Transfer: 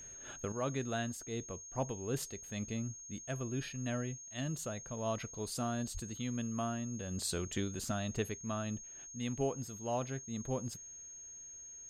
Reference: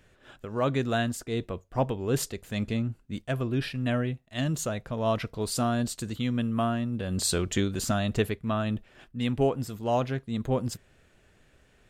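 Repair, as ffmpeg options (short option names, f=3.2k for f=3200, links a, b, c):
-filter_complex "[0:a]bandreject=f=6.5k:w=30,asplit=3[a][b][c];[a]afade=t=out:st=5.93:d=0.02[d];[b]highpass=f=140:w=0.5412,highpass=f=140:w=1.3066,afade=t=in:st=5.93:d=0.02,afade=t=out:st=6.05:d=0.02[e];[c]afade=t=in:st=6.05:d=0.02[f];[d][e][f]amix=inputs=3:normalize=0,asetnsamples=n=441:p=0,asendcmd='0.52 volume volume 10dB',volume=0dB"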